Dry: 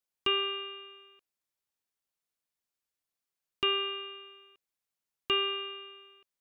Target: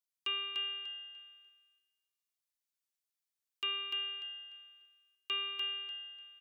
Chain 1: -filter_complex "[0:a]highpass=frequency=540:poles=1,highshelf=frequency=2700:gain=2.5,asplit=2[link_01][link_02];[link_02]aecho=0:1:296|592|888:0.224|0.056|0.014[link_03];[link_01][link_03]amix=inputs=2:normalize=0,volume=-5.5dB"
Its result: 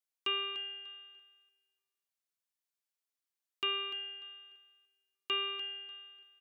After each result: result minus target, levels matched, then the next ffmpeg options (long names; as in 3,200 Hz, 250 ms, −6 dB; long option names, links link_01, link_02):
500 Hz band +8.5 dB; echo-to-direct −9.5 dB
-filter_complex "[0:a]highpass=frequency=2100:poles=1,highshelf=frequency=2700:gain=2.5,asplit=2[link_01][link_02];[link_02]aecho=0:1:296|592|888:0.224|0.056|0.014[link_03];[link_01][link_03]amix=inputs=2:normalize=0,volume=-5.5dB"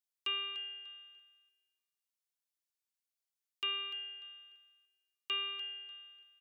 echo-to-direct −9.5 dB
-filter_complex "[0:a]highpass=frequency=2100:poles=1,highshelf=frequency=2700:gain=2.5,asplit=2[link_01][link_02];[link_02]aecho=0:1:296|592|888|1184:0.668|0.167|0.0418|0.0104[link_03];[link_01][link_03]amix=inputs=2:normalize=0,volume=-5.5dB"